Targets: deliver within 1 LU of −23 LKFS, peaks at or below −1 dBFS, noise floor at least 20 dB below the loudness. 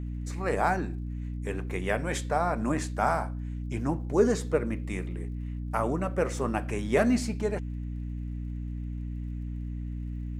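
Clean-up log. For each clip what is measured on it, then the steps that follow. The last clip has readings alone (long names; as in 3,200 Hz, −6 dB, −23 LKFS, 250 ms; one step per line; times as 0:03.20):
crackle rate 37 per second; mains hum 60 Hz; hum harmonics up to 300 Hz; level of the hum −32 dBFS; integrated loudness −30.5 LKFS; sample peak −11.0 dBFS; target loudness −23.0 LKFS
→ click removal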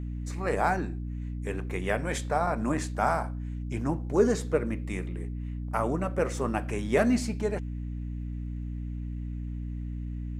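crackle rate 0.096 per second; mains hum 60 Hz; hum harmonics up to 300 Hz; level of the hum −32 dBFS
→ mains-hum notches 60/120/180/240/300 Hz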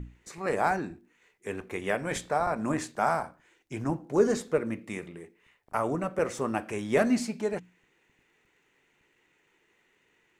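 mains hum none found; integrated loudness −30.0 LKFS; sample peak −12.0 dBFS; target loudness −23.0 LKFS
→ level +7 dB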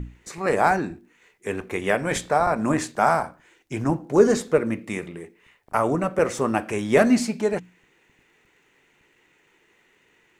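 integrated loudness −23.0 LKFS; sample peak −5.0 dBFS; background noise floor −63 dBFS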